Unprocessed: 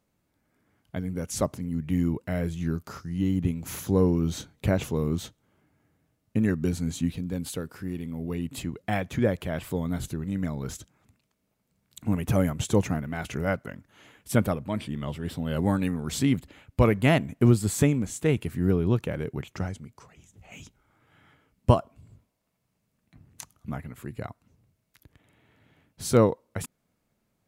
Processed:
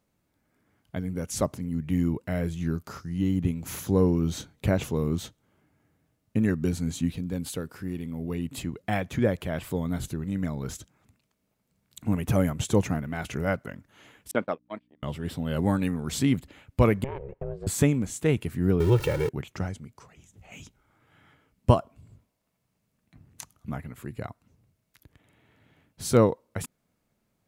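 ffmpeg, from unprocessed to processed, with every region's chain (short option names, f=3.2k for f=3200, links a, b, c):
-filter_complex "[0:a]asettb=1/sr,asplit=3[a][b][c];[a]atrim=end=14.314[d];[b]atrim=start=14.31:end=15.03,asetpts=PTS-STARTPTS,afade=t=in:d=0.004:c=qsin,afade=t=out:st=0.716:d=0.004:c=qsin,agate=range=-36dB:threshold=-28dB:ratio=16:release=100:detection=peak,aeval=exprs='val(0)+0.00224*(sin(2*PI*60*n/s)+sin(2*PI*2*60*n/s)/2+sin(2*PI*3*60*n/s)/3+sin(2*PI*4*60*n/s)/4+sin(2*PI*5*60*n/s)/5)':c=same,highpass=340,lowpass=3.8k[e];[c]atrim=start=15.026[f];[d][e]acrossfade=d=0.004:c1=hsin:c2=qsin[g];[g][f]acrossfade=d=0.004:c1=qsin:c2=hsin,asettb=1/sr,asplit=3[h][i][j];[h]atrim=end=17.044[k];[i]atrim=start=17.04:end=17.67,asetpts=PTS-STARTPTS,afade=t=in:d=0.004:c=qsin,afade=t=out:st=0.626:d=0.004:c=qsin,lowpass=1.4k,acompressor=threshold=-28dB:ratio=6:attack=3.2:release=140:knee=1:detection=peak,aeval=exprs='val(0)*sin(2*PI*270*n/s)':c=same[l];[j]atrim=start=17.666[m];[k][l]acrossfade=d=0.004:c1=hsin:c2=qsin[n];[n][m]acrossfade=d=0.004:c1=qsin:c2=hsin,asettb=1/sr,asplit=3[o][p][q];[o]atrim=end=18.804[r];[p]atrim=start=18.8:end=19.29,asetpts=PTS-STARTPTS,afade=t=in:d=0.004:c=qsin,afade=t=out:st=0.486:d=0.004:c=qsin,aeval=exprs='val(0)+0.5*0.0211*sgn(val(0))':c=same,aecho=1:1:2.2:0.96,atrim=end_sample=21609[s];[q]atrim=start=19.286[t];[r][s]acrossfade=d=0.004:c1=hsin:c2=qsin[u];[u][t]acrossfade=d=0.004:c1=qsin:c2=hsin"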